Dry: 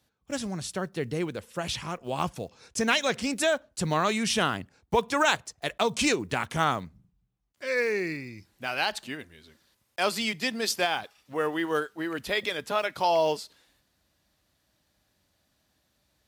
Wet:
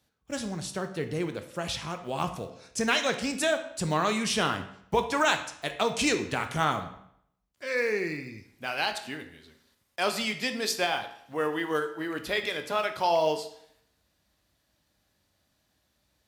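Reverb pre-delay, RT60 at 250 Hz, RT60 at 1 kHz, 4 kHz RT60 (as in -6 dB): 16 ms, 0.70 s, 0.70 s, 0.60 s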